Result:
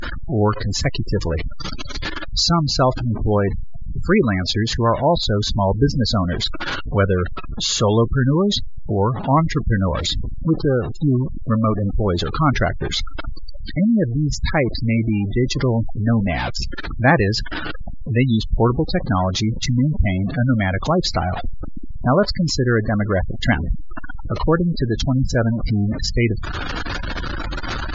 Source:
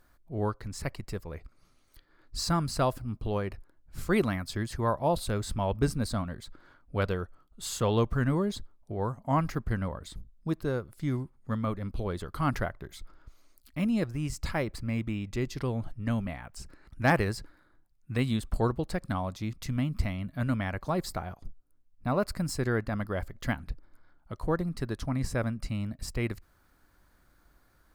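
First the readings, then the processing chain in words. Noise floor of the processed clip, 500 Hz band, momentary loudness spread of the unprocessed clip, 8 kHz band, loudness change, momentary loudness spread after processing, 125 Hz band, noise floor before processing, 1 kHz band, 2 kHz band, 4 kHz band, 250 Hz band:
-26 dBFS, +11.5 dB, 13 LU, +11.5 dB, +11.5 dB, 11 LU, +12.5 dB, -65 dBFS, +11.0 dB, +12.0 dB, +18.0 dB, +12.0 dB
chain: zero-crossing step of -29.5 dBFS; dynamic EQ 3700 Hz, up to +5 dB, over -48 dBFS, Q 1; in parallel at -1 dB: vocal rider within 4 dB 0.5 s; on the sum: spectral gate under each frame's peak -20 dB strong; gain +4.5 dB; MP3 80 kbps 16000 Hz

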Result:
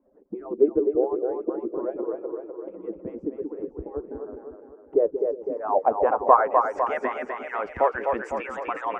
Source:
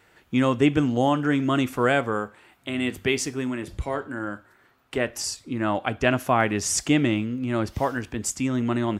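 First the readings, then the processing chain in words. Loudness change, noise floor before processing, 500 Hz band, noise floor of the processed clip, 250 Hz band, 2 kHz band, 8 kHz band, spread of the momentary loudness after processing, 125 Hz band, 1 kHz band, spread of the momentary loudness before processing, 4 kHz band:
-1.0 dB, -60 dBFS, +3.0 dB, -51 dBFS, -9.0 dB, -7.5 dB, under -30 dB, 15 LU, under -20 dB, +4.0 dB, 10 LU, under -20 dB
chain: median-filter separation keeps percussive; low shelf 120 Hz -5.5 dB; low-pass sweep 350 Hz -> 2300 Hz, 4.75–7.44; split-band echo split 370 Hz, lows 0.18 s, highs 0.252 s, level -5 dB; in parallel at +1 dB: compressor, threshold -37 dBFS, peak gain reduction 23 dB; on the sum: ten-band EQ 125 Hz -7 dB, 500 Hz +11 dB, 1000 Hz +7 dB, 4000 Hz -11 dB; gain -7.5 dB

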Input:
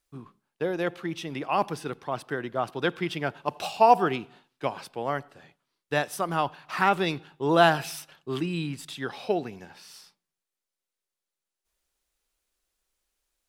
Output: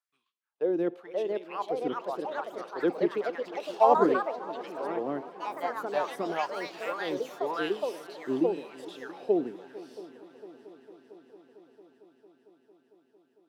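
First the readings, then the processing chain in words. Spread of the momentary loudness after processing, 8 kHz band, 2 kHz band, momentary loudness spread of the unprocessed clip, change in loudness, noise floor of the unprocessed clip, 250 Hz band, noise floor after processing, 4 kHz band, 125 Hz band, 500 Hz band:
17 LU, under -10 dB, -8.0 dB, 15 LU, -3.0 dB, under -85 dBFS, -1.0 dB, -71 dBFS, -9.5 dB, -14.0 dB, 0.0 dB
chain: tilt shelf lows +9 dB, about 660 Hz; LFO high-pass sine 0.93 Hz 280–3300 Hz; multi-head echo 0.226 s, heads second and third, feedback 69%, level -19 dB; echoes that change speed 0.627 s, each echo +3 st, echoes 3; gain -8 dB

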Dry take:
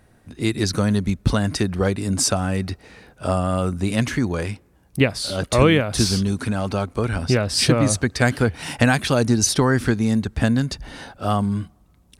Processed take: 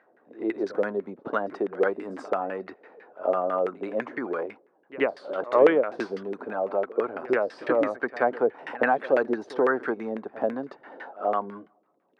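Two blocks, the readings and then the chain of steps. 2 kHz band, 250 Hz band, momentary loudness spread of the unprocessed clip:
-6.0 dB, -11.5 dB, 11 LU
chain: LFO low-pass saw down 6 Hz 410–2000 Hz; ladder high-pass 300 Hz, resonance 25%; pre-echo 82 ms -18 dB

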